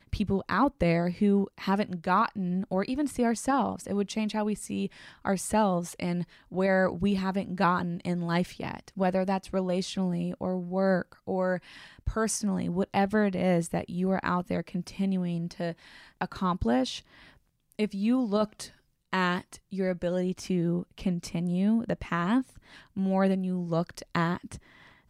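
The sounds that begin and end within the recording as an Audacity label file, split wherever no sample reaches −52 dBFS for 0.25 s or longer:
17.720000	18.760000	sound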